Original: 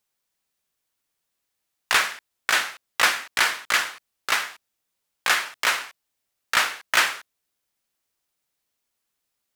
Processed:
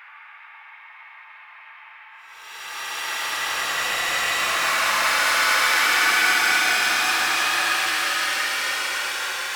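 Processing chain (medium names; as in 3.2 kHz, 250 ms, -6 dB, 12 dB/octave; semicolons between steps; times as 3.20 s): band noise 860–2500 Hz -42 dBFS; chorus voices 2, 0.6 Hz, delay 22 ms, depth 3.7 ms; Paulstretch 49×, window 0.05 s, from 2.93 s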